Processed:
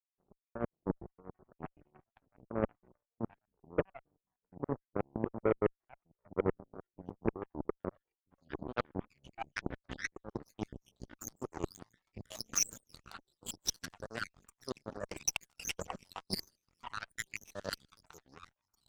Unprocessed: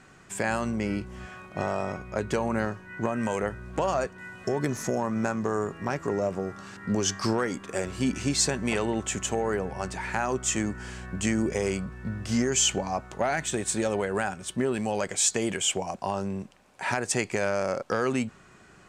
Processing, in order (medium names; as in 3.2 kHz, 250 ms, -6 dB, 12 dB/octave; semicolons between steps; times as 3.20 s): random holes in the spectrogram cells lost 85%; reverse; compression 5:1, threshold -39 dBFS, peak gain reduction 14.5 dB; reverse; low-pass sweep 490 Hz -> 5.6 kHz, 7.42–11.12 s; ever faster or slower copies 486 ms, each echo -4 st, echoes 3, each echo -6 dB; on a send: feedback echo behind a high-pass 157 ms, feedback 31%, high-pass 5.5 kHz, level -10 dB; on the sum: Chebyshev shaper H 6 -29 dB, 7 -17 dB, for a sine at -21.5 dBFS; warped record 45 rpm, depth 250 cents; trim +6 dB